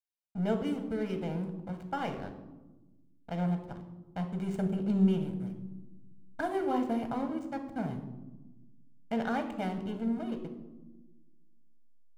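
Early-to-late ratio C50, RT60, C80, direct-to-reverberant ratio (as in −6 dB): 9.0 dB, 1.2 s, 11.5 dB, 5.5 dB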